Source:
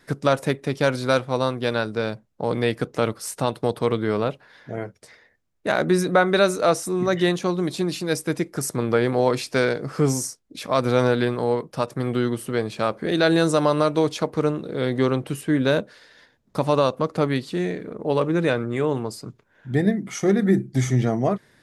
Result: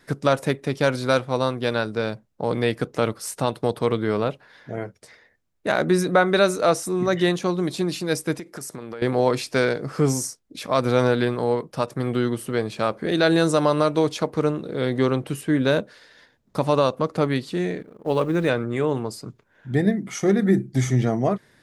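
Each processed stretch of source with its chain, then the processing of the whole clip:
8.39–9.02 low shelf 140 Hz -10.5 dB + compressor 12:1, threshold -30 dBFS
17.82–18.49 G.711 law mismatch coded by A + gate -31 dBFS, range -10 dB
whole clip: dry

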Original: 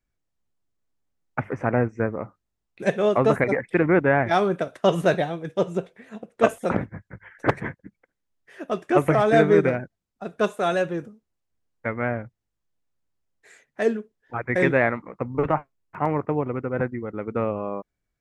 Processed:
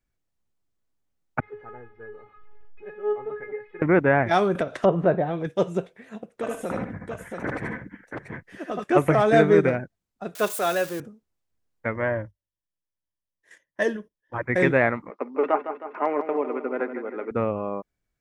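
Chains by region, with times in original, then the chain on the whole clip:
1.4–3.82 zero-crossing step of -32 dBFS + LPF 2200 Hz 24 dB/oct + resonator 420 Hz, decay 0.26 s, mix 100%
4.55–5.47 treble ducked by the level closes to 1100 Hz, closed at -17.5 dBFS + upward compressor, threshold -20 dBFS
6.34–8.84 compressor 10:1, threshold -25 dBFS + tapped delay 75/79/140/682 ms -3.5/-6.5/-14.5/-4.5 dB
10.35–11 switching spikes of -25.5 dBFS + HPF 350 Hz 6 dB/oct
11.95–14.43 gate -52 dBFS, range -14 dB + ripple EQ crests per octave 1.2, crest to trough 11 dB
15.1–17.31 Chebyshev band-pass 270–5600 Hz, order 4 + comb 4.9 ms, depth 35% + feedback echo 0.157 s, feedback 56%, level -10 dB
whole clip: dry

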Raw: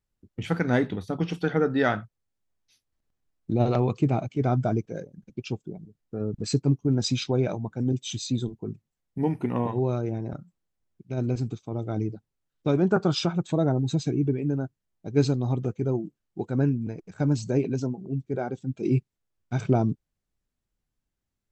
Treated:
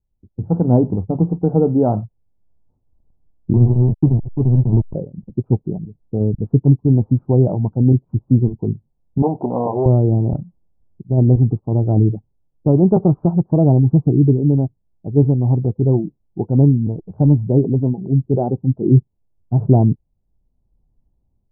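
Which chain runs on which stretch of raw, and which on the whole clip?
3.53–4.95 Chebyshev band-pass 100–420 Hz, order 5 + backlash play -25.5 dBFS
9.22–9.86 sample leveller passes 2 + band-pass 680 Hz, Q 1.8
whole clip: steep low-pass 950 Hz 48 dB/oct; low shelf 170 Hz +11.5 dB; AGC gain up to 11.5 dB; gain -1 dB

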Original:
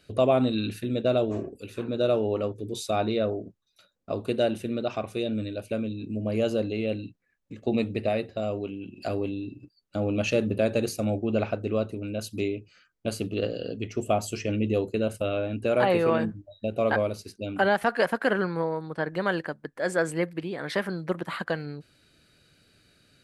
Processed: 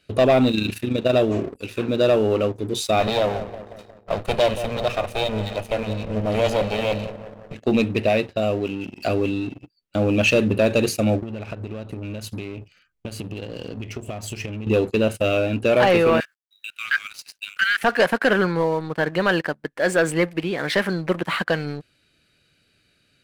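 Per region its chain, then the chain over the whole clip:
0.51–1.14 high shelf 9600 Hz +5.5 dB + AM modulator 27 Hz, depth 45%
3–7.55 minimum comb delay 1.6 ms + darkening echo 0.179 s, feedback 71%, low-pass 1400 Hz, level -11.5 dB
11.22–14.67 low shelf 160 Hz +11 dB + compressor 20:1, threshold -34 dBFS
16.2–17.83 steep high-pass 1300 Hz 72 dB/oct + requantised 12-bit, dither none
whole clip: bell 2600 Hz +6 dB 0.9 oct; sample leveller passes 2

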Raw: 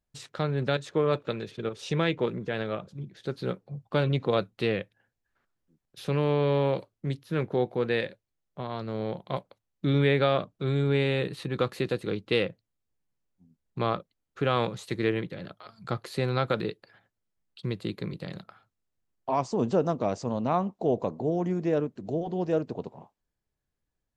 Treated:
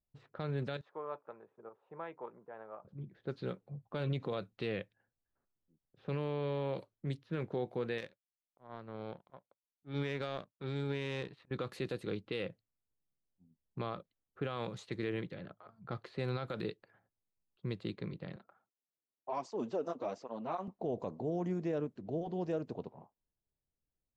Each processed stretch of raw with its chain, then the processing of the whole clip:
0.81–2.85 band-pass 910 Hz, Q 2.4 + air absorption 150 m
7.98–11.51 auto swell 0.163 s + power-law curve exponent 1.4 + mismatched tape noise reduction encoder only
18.36–20.68 HPF 260 Hz + tape flanging out of phase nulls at 1.3 Hz, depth 7.2 ms
whole clip: low-pass opened by the level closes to 820 Hz, open at -25 dBFS; limiter -19.5 dBFS; gain -7 dB

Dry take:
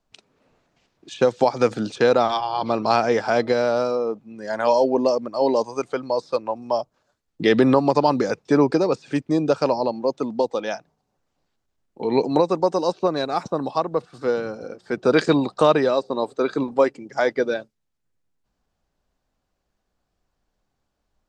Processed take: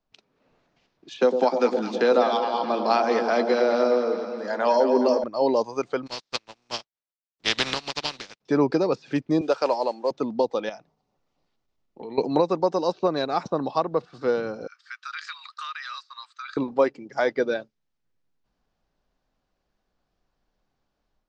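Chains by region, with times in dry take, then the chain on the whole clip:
1.18–5.24 steep high-pass 170 Hz 96 dB/oct + doubler 16 ms -13 dB + echo with dull and thin repeats by turns 0.105 s, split 840 Hz, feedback 76%, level -6 dB
6.06–8.4 spectral contrast lowered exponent 0.32 + dynamic EQ 3400 Hz, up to +8 dB, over -33 dBFS, Q 0.82 + upward expander 2.5:1, over -30 dBFS
9.41–10.11 HPF 430 Hz + modulation noise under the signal 25 dB
10.69–12.18 compressor 3:1, threshold -35 dBFS + notch 1600 Hz, Q 7.9
14.67–16.57 Chebyshev high-pass 1200 Hz, order 5 + compressor, threshold -31 dBFS
whole clip: LPF 6000 Hz 24 dB/oct; bell 78 Hz -5.5 dB; AGC gain up to 6 dB; gain -6 dB

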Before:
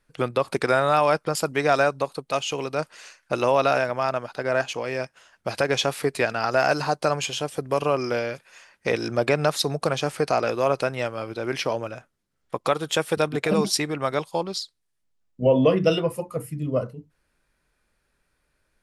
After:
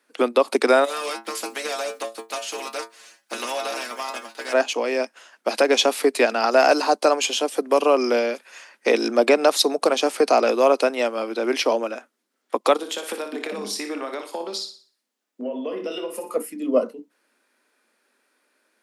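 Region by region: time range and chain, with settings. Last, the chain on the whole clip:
0.84–4.52 spectral contrast lowered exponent 0.55 + metallic resonator 110 Hz, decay 0.23 s, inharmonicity 0.002 + compressor 4:1, threshold -29 dBFS
12.76–16.35 doubler 24 ms -11 dB + compressor 10:1, threshold -31 dBFS + flutter echo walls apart 10.2 m, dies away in 0.42 s
whole clip: steep high-pass 220 Hz 72 dB/oct; dynamic EQ 1600 Hz, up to -5 dB, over -39 dBFS, Q 1.6; gain +6 dB

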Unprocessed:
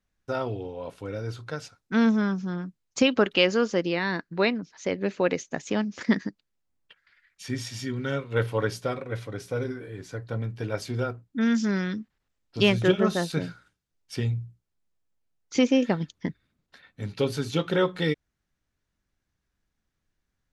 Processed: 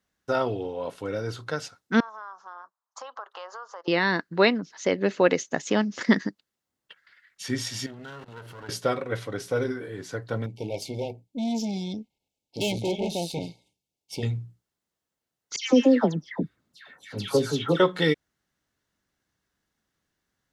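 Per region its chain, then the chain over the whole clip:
2–3.88 HPF 770 Hz 24 dB/oct + resonant high shelf 1600 Hz -13 dB, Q 3 + compressor 4:1, threshold -42 dBFS
7.86–8.69 minimum comb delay 0.67 ms + level quantiser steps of 22 dB
10.46–14.23 tube stage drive 27 dB, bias 0.65 + brick-wall FIR band-stop 950–2100 Hz
15.56–17.8 dynamic EQ 2400 Hz, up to -5 dB, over -41 dBFS, Q 0.84 + dispersion lows, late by 0.149 s, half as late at 1700 Hz
whole clip: HPF 210 Hz 6 dB/oct; notch 2400 Hz, Q 12; gain +5 dB

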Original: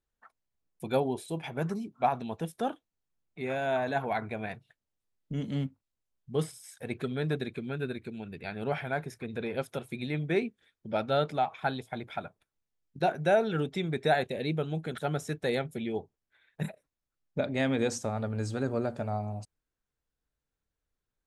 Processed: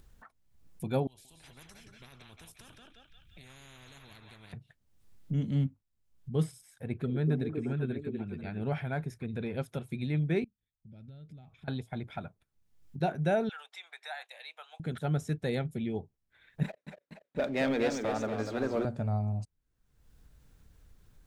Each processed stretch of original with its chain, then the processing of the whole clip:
1.07–4.53 passive tone stack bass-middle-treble 10-0-1 + narrowing echo 0.175 s, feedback 47%, band-pass 2600 Hz, level -6 dB + spectral compressor 10:1
6.61–8.64 bell 6500 Hz -7 dB 2.4 oct + delay with a stepping band-pass 0.245 s, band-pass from 340 Hz, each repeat 1.4 oct, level 0 dB
10.44–11.68 passive tone stack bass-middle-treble 10-0-1 + compressor 5:1, threshold -59 dBFS
13.49–14.8 steep high-pass 770 Hz + compressor 2:1, threshold -36 dBFS
16.63–18.85 BPF 390–4000 Hz + sample leveller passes 2 + warbling echo 0.239 s, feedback 48%, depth 116 cents, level -6.5 dB
whole clip: upward compressor, threshold -42 dBFS; tone controls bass +11 dB, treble 0 dB; gain -5 dB

